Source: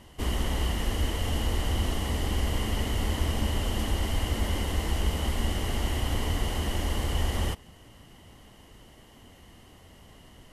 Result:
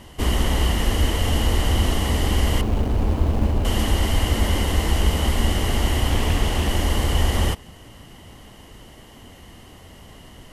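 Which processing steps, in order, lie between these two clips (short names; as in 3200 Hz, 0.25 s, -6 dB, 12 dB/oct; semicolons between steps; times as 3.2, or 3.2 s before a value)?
2.61–3.65 median filter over 25 samples; 6.1–6.69 Doppler distortion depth 0.35 ms; gain +8 dB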